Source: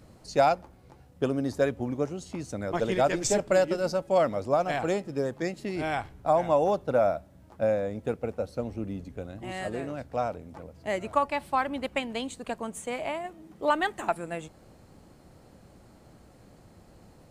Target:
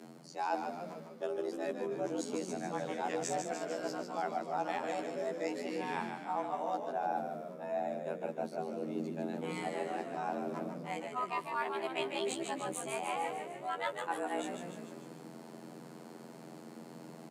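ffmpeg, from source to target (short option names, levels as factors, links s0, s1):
-filter_complex "[0:a]areverse,acompressor=threshold=0.0141:ratio=8,areverse,afftfilt=real='hypot(re,im)*cos(PI*b)':imag='0':win_size=2048:overlap=0.75,asplit=9[s0][s1][s2][s3][s4][s5][s6][s7][s8];[s1]adelay=149,afreqshift=-65,volume=0.501[s9];[s2]adelay=298,afreqshift=-130,volume=0.302[s10];[s3]adelay=447,afreqshift=-195,volume=0.18[s11];[s4]adelay=596,afreqshift=-260,volume=0.108[s12];[s5]adelay=745,afreqshift=-325,volume=0.0653[s13];[s6]adelay=894,afreqshift=-390,volume=0.0389[s14];[s7]adelay=1043,afreqshift=-455,volume=0.0234[s15];[s8]adelay=1192,afreqshift=-520,volume=0.014[s16];[s0][s9][s10][s11][s12][s13][s14][s15][s16]amix=inputs=9:normalize=0,afreqshift=140,volume=2"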